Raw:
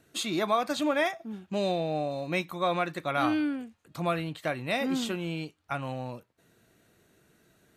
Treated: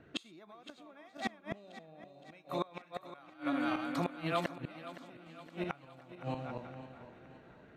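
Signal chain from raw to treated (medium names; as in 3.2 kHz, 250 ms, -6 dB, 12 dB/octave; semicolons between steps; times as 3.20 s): backward echo that repeats 235 ms, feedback 46%, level -6.5 dB; compression 4:1, threshold -29 dBFS, peak gain reduction 8 dB; treble shelf 5.5 kHz -9.5 dB; level-controlled noise filter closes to 2.3 kHz, open at -33.5 dBFS; 2.31–4.56 s: bass shelf 370 Hz -8.5 dB; inverted gate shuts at -26 dBFS, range -28 dB; thinning echo 516 ms, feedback 52%, high-pass 160 Hz, level -14 dB; trim +5 dB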